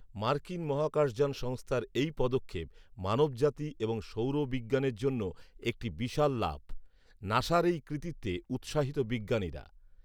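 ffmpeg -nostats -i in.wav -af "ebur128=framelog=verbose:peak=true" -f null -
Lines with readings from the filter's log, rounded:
Integrated loudness:
  I:         -32.8 LUFS
  Threshold: -43.2 LUFS
Loudness range:
  LRA:         1.3 LU
  Threshold: -53.2 LUFS
  LRA low:   -33.8 LUFS
  LRA high:  -32.5 LUFS
True peak:
  Peak:      -13.4 dBFS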